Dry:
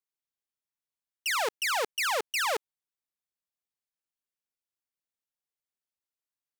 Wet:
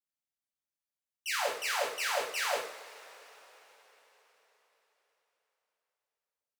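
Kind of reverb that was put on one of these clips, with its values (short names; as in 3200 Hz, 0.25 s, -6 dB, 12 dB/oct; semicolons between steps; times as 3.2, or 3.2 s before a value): two-slope reverb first 0.48 s, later 4.6 s, from -22 dB, DRR -6 dB; gain -10.5 dB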